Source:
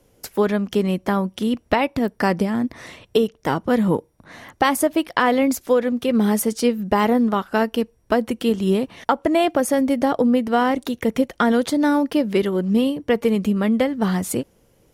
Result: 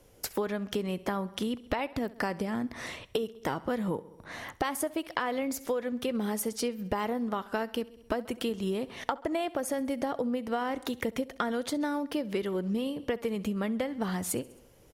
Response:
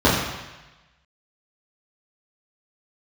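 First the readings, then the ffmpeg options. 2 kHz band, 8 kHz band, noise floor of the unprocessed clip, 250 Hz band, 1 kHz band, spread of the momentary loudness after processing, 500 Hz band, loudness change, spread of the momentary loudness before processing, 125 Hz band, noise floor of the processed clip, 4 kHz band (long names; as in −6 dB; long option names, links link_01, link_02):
−11.0 dB, −7.5 dB, −60 dBFS, −13.0 dB, −12.0 dB, 3 LU, −12.0 dB, −12.0 dB, 5 LU, −12.0 dB, −57 dBFS, −9.0 dB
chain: -af "equalizer=frequency=210:width_type=o:width=1.5:gain=-4,aecho=1:1:66|132|198|264:0.0841|0.0429|0.0219|0.0112,acompressor=threshold=-29dB:ratio=5"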